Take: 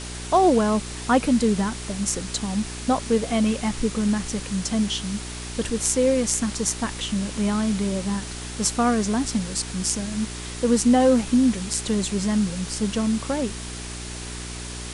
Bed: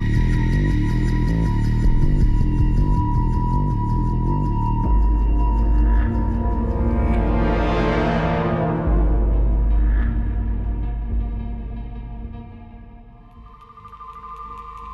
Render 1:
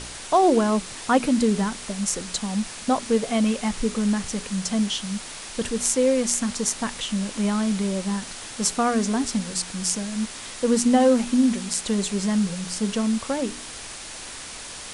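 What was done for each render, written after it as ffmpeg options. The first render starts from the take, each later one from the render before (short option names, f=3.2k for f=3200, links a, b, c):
-af "bandreject=f=60:t=h:w=4,bandreject=f=120:t=h:w=4,bandreject=f=180:t=h:w=4,bandreject=f=240:t=h:w=4,bandreject=f=300:t=h:w=4,bandreject=f=360:t=h:w=4,bandreject=f=420:t=h:w=4"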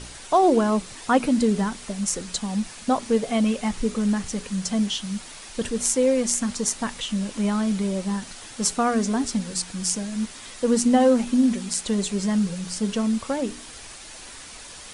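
-af "afftdn=nr=6:nf=-38"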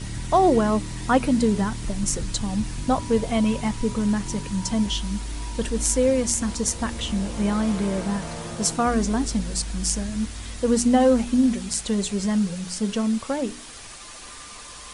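-filter_complex "[1:a]volume=-14dB[a];[0:a][a]amix=inputs=2:normalize=0"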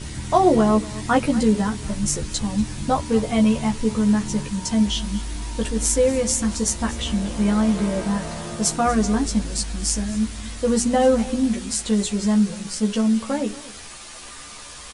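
-filter_complex "[0:a]asplit=2[a][b];[b]adelay=14,volume=-3dB[c];[a][c]amix=inputs=2:normalize=0,aecho=1:1:236:0.126"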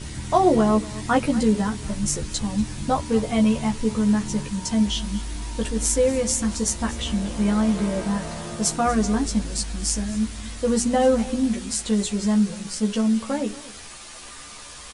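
-af "volume=-1.5dB"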